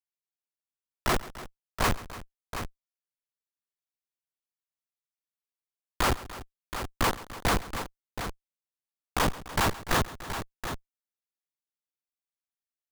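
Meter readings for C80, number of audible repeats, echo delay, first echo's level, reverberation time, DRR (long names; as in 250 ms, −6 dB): no reverb audible, 3, 135 ms, −18.0 dB, no reverb audible, no reverb audible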